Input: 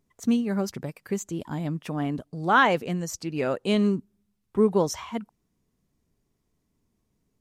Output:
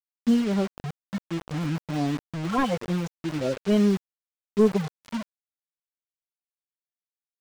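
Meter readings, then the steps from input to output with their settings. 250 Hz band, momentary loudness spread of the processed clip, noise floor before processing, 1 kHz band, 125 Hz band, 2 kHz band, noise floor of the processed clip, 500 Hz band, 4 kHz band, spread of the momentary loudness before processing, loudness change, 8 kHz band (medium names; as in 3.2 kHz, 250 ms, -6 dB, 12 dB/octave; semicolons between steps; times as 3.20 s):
+2.0 dB, 13 LU, -76 dBFS, -6.5 dB, +2.0 dB, -9.0 dB, under -85 dBFS, -0.5 dB, -2.5 dB, 12 LU, -0.5 dB, -7.0 dB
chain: harmonic-percussive separation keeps harmonic; modulation noise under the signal 34 dB; word length cut 6-bit, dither none; slew-rate limiter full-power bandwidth 65 Hz; trim +2 dB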